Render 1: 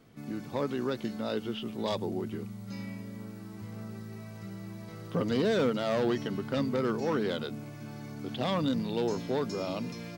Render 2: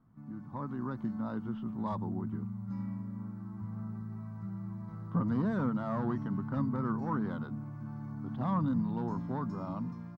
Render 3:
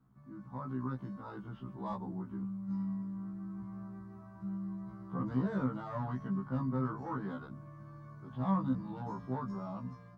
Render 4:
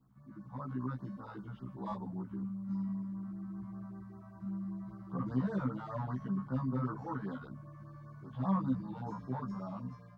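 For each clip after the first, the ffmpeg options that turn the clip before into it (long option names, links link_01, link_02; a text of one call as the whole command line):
ffmpeg -i in.wav -af "firequalizer=gain_entry='entry(200,0);entry(440,-18);entry(1000,0);entry(2500,-26)':delay=0.05:min_phase=1,dynaudnorm=framelen=260:gausssize=5:maxgain=6.5dB,volume=-4dB" out.wav
ffmpeg -i in.wav -af "afftfilt=real='re*1.73*eq(mod(b,3),0)':imag='im*1.73*eq(mod(b,3),0)':win_size=2048:overlap=0.75" out.wav
ffmpeg -i in.wav -af "afftfilt=real='re*(1-between(b*sr/1024,300*pow(2900/300,0.5+0.5*sin(2*PI*5.1*pts/sr))/1.41,300*pow(2900/300,0.5+0.5*sin(2*PI*5.1*pts/sr))*1.41))':imag='im*(1-between(b*sr/1024,300*pow(2900/300,0.5+0.5*sin(2*PI*5.1*pts/sr))/1.41,300*pow(2900/300,0.5+0.5*sin(2*PI*5.1*pts/sr))*1.41))':win_size=1024:overlap=0.75" out.wav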